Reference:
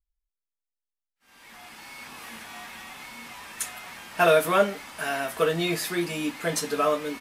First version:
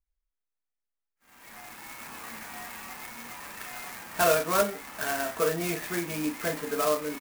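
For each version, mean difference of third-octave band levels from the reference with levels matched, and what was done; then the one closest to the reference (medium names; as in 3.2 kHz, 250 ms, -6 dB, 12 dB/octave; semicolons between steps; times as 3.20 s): 4.5 dB: in parallel at -1 dB: compression, threshold -32 dBFS, peak gain reduction 16 dB; on the sum: four-pole ladder low-pass 3.2 kHz, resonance 25%; doubling 33 ms -7 dB; sampling jitter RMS 0.067 ms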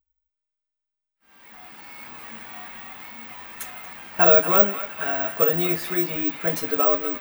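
3.0 dB: treble shelf 3.6 kHz -11 dB; hum notches 50/100/150 Hz; on a send: band-passed feedback delay 233 ms, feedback 75%, band-pass 2.4 kHz, level -10 dB; on the sum: careless resampling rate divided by 2×, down none, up zero stuff; trim +1.5 dB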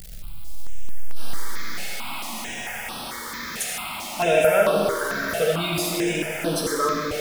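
7.0 dB: jump at every zero crossing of -30 dBFS; on a send: repeats whose band climbs or falls 447 ms, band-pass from 460 Hz, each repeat 0.7 oct, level -12 dB; on the sum: algorithmic reverb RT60 2.5 s, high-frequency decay 0.85×, pre-delay 30 ms, DRR -1.5 dB; stepped phaser 4.5 Hz 280–7000 Hz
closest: second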